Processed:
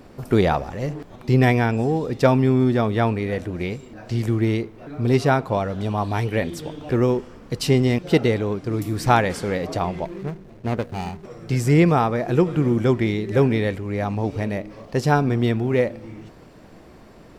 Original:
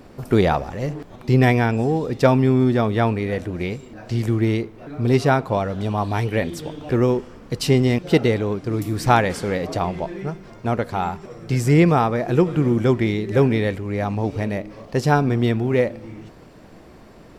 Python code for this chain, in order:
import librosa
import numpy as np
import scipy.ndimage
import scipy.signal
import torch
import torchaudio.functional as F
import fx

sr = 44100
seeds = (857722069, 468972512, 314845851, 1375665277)

y = fx.median_filter(x, sr, points=41, at=(10.05, 11.25))
y = y * librosa.db_to_amplitude(-1.0)